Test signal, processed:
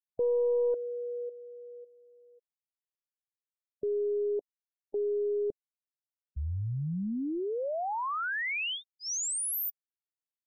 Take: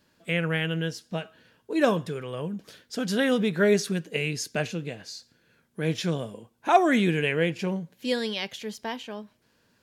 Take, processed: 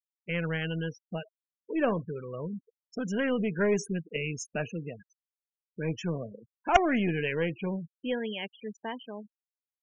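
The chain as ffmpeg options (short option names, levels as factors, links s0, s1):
-af "aeval=exprs='0.473*(cos(1*acos(clip(val(0)/0.473,-1,1)))-cos(1*PI/2))+0.133*(cos(2*acos(clip(val(0)/0.473,-1,1)))-cos(2*PI/2))+0.188*(cos(3*acos(clip(val(0)/0.473,-1,1)))-cos(3*PI/2))+0.0473*(cos(4*acos(clip(val(0)/0.473,-1,1)))-cos(4*PI/2))+0.0668*(cos(5*acos(clip(val(0)/0.473,-1,1)))-cos(5*PI/2))':c=same,asuperstop=centerf=4200:order=8:qfactor=1.9,afftfilt=real='re*gte(hypot(re,im),0.0141)':imag='im*gte(hypot(re,im),0.0141)':win_size=1024:overlap=0.75,volume=1.33"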